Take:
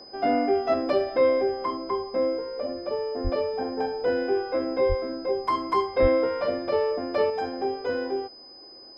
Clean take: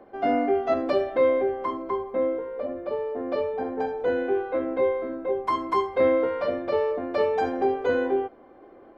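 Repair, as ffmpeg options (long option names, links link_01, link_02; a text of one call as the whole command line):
ffmpeg -i in.wav -filter_complex "[0:a]bandreject=frequency=5000:width=30,asplit=3[link_01][link_02][link_03];[link_01]afade=type=out:start_time=3.23:duration=0.02[link_04];[link_02]highpass=frequency=140:width=0.5412,highpass=frequency=140:width=1.3066,afade=type=in:start_time=3.23:duration=0.02,afade=type=out:start_time=3.35:duration=0.02[link_05];[link_03]afade=type=in:start_time=3.35:duration=0.02[link_06];[link_04][link_05][link_06]amix=inputs=3:normalize=0,asplit=3[link_07][link_08][link_09];[link_07]afade=type=out:start_time=4.88:duration=0.02[link_10];[link_08]highpass=frequency=140:width=0.5412,highpass=frequency=140:width=1.3066,afade=type=in:start_time=4.88:duration=0.02,afade=type=out:start_time=5:duration=0.02[link_11];[link_09]afade=type=in:start_time=5:duration=0.02[link_12];[link_10][link_11][link_12]amix=inputs=3:normalize=0,asplit=3[link_13][link_14][link_15];[link_13]afade=type=out:start_time=6.01:duration=0.02[link_16];[link_14]highpass=frequency=140:width=0.5412,highpass=frequency=140:width=1.3066,afade=type=in:start_time=6.01:duration=0.02,afade=type=out:start_time=6.13:duration=0.02[link_17];[link_15]afade=type=in:start_time=6.13:duration=0.02[link_18];[link_16][link_17][link_18]amix=inputs=3:normalize=0,asetnsamples=nb_out_samples=441:pad=0,asendcmd='7.3 volume volume 4.5dB',volume=0dB" out.wav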